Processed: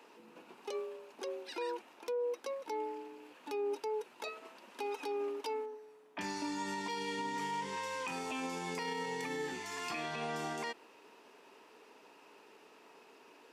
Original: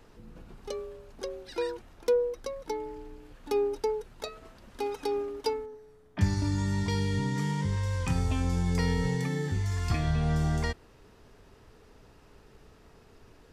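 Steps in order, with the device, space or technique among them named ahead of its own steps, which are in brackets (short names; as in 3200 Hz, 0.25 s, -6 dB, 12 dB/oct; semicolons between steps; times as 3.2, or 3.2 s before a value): laptop speaker (HPF 270 Hz 24 dB/oct; bell 940 Hz +7.5 dB 0.33 oct; bell 2600 Hz +8.5 dB 0.4 oct; limiter -28.5 dBFS, peak gain reduction 13 dB); gain -1.5 dB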